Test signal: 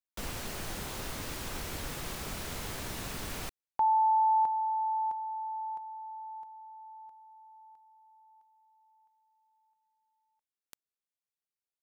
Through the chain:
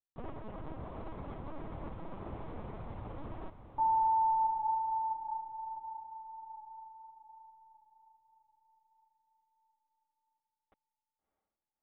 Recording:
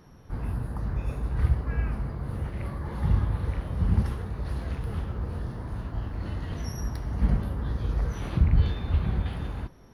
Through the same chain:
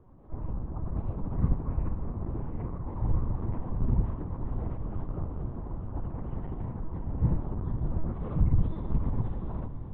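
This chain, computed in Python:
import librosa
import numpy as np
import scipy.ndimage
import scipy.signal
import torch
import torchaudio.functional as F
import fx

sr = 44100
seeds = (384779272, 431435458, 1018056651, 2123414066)

y = scipy.signal.savgol_filter(x, 65, 4, mode='constant')
y = fx.lpc_vocoder(y, sr, seeds[0], excitation='pitch_kept', order=8)
y = fx.echo_diffused(y, sr, ms=638, feedback_pct=43, wet_db=-10.5)
y = y * 10.0 ** (-2.5 / 20.0)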